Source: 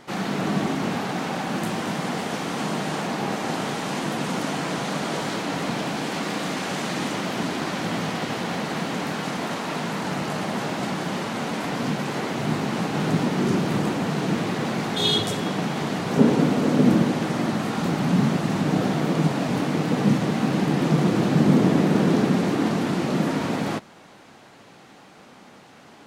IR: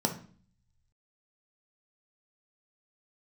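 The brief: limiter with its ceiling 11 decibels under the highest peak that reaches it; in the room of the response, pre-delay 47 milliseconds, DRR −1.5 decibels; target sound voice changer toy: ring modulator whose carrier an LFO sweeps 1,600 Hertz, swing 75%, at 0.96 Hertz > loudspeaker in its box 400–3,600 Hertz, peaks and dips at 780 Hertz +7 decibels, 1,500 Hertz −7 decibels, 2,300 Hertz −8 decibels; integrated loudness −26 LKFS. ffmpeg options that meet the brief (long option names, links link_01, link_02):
-filter_complex "[0:a]alimiter=limit=-13.5dB:level=0:latency=1,asplit=2[link_01][link_02];[1:a]atrim=start_sample=2205,adelay=47[link_03];[link_02][link_03]afir=irnorm=-1:irlink=0,volume=-6dB[link_04];[link_01][link_04]amix=inputs=2:normalize=0,aeval=exprs='val(0)*sin(2*PI*1600*n/s+1600*0.75/0.96*sin(2*PI*0.96*n/s))':channel_layout=same,highpass=400,equalizer=frequency=780:width_type=q:width=4:gain=7,equalizer=frequency=1500:width_type=q:width=4:gain=-7,equalizer=frequency=2300:width_type=q:width=4:gain=-8,lowpass=frequency=3600:width=0.5412,lowpass=frequency=3600:width=1.3066,volume=-8dB"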